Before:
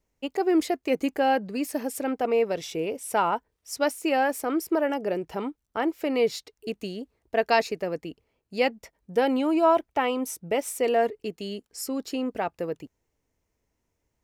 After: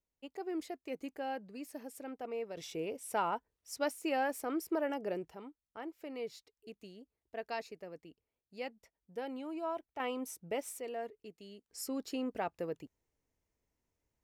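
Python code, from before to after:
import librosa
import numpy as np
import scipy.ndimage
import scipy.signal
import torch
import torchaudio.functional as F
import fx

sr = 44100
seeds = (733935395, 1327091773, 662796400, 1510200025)

y = fx.gain(x, sr, db=fx.steps((0.0, -16.5), (2.57, -9.5), (5.3, -18.0), (10.0, -11.0), (10.8, -18.0), (11.68, -8.0)))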